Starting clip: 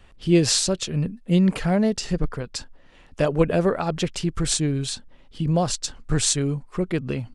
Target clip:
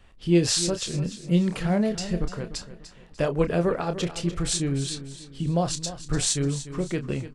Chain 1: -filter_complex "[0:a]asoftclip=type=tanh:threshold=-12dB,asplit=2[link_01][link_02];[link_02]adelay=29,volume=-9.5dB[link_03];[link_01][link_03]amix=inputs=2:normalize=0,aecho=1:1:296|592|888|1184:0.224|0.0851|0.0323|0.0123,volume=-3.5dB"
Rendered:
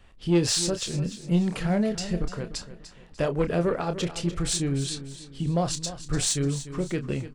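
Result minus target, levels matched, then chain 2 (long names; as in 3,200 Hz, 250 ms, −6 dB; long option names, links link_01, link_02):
soft clipping: distortion +17 dB
-filter_complex "[0:a]asoftclip=type=tanh:threshold=-1.5dB,asplit=2[link_01][link_02];[link_02]adelay=29,volume=-9.5dB[link_03];[link_01][link_03]amix=inputs=2:normalize=0,aecho=1:1:296|592|888|1184:0.224|0.0851|0.0323|0.0123,volume=-3.5dB"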